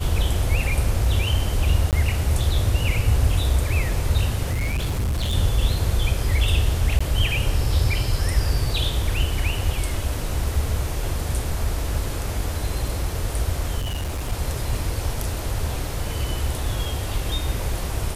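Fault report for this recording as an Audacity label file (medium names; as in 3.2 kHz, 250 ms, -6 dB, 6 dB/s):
1.910000	1.930000	dropout 18 ms
4.510000	5.350000	clipped -20 dBFS
6.990000	7.000000	dropout 15 ms
13.790000	14.330000	clipped -23 dBFS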